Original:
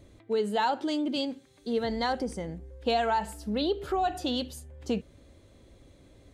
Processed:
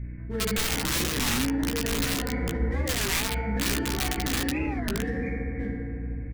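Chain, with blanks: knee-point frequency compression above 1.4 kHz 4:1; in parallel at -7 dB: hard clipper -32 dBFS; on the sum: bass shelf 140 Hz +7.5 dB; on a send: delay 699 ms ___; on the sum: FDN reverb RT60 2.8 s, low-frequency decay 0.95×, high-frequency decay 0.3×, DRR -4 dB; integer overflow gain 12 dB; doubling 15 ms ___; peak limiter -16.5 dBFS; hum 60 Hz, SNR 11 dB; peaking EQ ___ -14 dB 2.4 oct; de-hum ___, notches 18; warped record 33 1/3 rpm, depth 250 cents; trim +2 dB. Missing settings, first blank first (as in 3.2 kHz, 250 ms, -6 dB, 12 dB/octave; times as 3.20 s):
-7.5 dB, -5 dB, 760 Hz, 260.1 Hz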